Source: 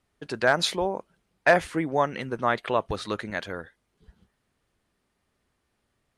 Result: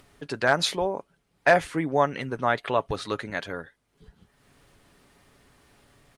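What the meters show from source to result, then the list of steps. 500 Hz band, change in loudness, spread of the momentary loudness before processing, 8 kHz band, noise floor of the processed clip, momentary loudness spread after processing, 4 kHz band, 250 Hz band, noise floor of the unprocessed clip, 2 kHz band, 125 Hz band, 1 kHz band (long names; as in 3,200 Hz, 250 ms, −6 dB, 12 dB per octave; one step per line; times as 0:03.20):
+0.5 dB, 0.0 dB, 14 LU, +0.5 dB, −72 dBFS, 14 LU, 0.0 dB, 0.0 dB, −76 dBFS, 0.0 dB, +1.5 dB, +1.0 dB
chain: comb filter 7.1 ms, depth 31%
upward compression, threshold −44 dBFS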